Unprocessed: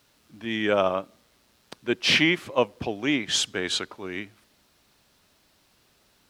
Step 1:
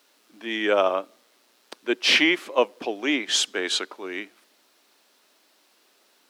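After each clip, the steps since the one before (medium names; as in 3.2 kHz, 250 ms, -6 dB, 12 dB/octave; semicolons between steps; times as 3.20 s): high-pass 280 Hz 24 dB/octave; trim +2 dB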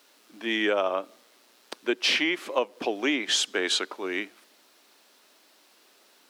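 compression 6:1, threshold -24 dBFS, peak gain reduction 10 dB; trim +2.5 dB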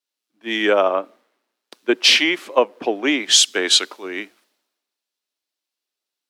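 three bands expanded up and down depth 100%; trim +5 dB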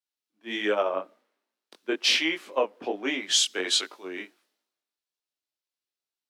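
chorus 1.3 Hz, delay 18.5 ms, depth 4.8 ms; trim -6 dB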